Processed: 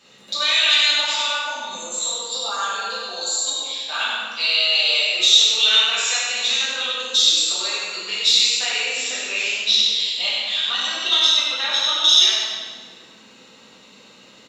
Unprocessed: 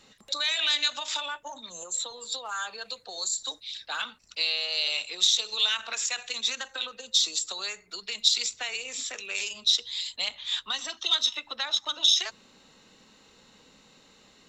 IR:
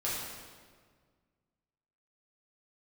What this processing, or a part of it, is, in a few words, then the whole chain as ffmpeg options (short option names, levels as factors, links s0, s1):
PA in a hall: -filter_complex "[0:a]asettb=1/sr,asplit=3[s0][s1][s2];[s0]atrim=end=9.264[s3];[s1]atrim=start=9.26:end=11.08,asetpts=PTS-STARTPTS,afade=t=in:d=0.004:c=qsin,afade=t=out:st=1.816:d=0.004:c=qsin,lowpass=6300[s4];[s2]atrim=start=11.076[s5];[s3][s4]acrossfade=d=0.004:c1=hsin:c2=qsin[s6];[s6][s5]acrossfade=d=0.004:c1=qsin:c2=hsin,highpass=140,equalizer=f=2800:t=o:w=0.63:g=4.5,aecho=1:1:96:0.562[s7];[1:a]atrim=start_sample=2205[s8];[s7][s8]afir=irnorm=-1:irlink=0,volume=1.26"